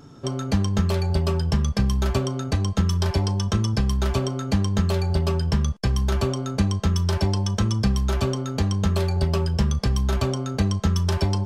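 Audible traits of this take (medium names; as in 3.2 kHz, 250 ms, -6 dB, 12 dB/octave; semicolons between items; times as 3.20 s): noise floor -32 dBFS; spectral tilt -6.5 dB/octave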